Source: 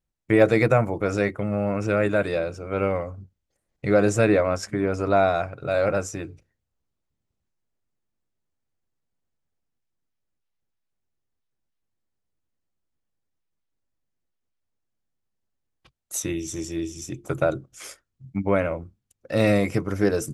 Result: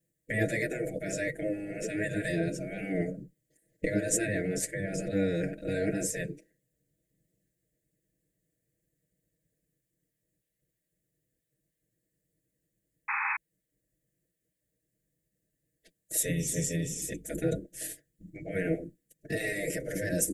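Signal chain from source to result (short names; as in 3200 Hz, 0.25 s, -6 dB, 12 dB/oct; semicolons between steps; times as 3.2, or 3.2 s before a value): in parallel at +2 dB: negative-ratio compressor -29 dBFS, ratio -1; on the sum: spectral gate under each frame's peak -10 dB weak; elliptic band-stop 600–1800 Hz, stop band 50 dB; band shelf 3600 Hz -10.5 dB; comb 6.3 ms, depth 89%; painted sound noise, 13.08–13.37, 790–2600 Hz -28 dBFS; gain -2.5 dB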